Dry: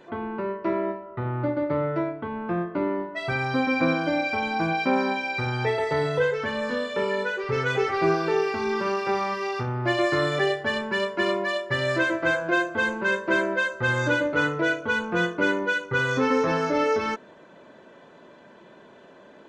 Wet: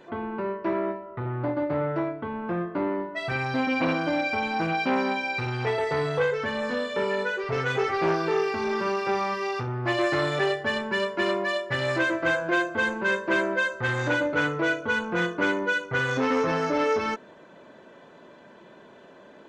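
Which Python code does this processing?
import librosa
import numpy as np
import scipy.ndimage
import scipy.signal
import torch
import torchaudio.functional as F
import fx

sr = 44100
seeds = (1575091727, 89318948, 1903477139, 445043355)

y = fx.transformer_sat(x, sr, knee_hz=810.0)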